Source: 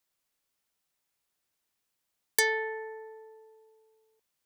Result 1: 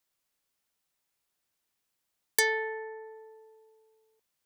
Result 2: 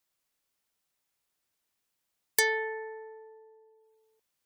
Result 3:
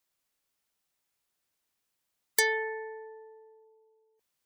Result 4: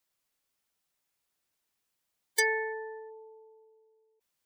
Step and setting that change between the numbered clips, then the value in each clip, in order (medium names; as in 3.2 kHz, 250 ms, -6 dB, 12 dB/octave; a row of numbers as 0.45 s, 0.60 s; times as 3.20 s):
spectral gate, under each frame's peak: -60 dB, -40 dB, -30 dB, -15 dB